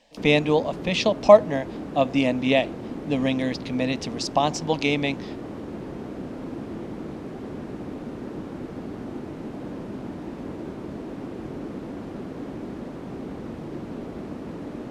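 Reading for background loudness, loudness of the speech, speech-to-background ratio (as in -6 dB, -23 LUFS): -35.5 LUFS, -22.5 LUFS, 13.0 dB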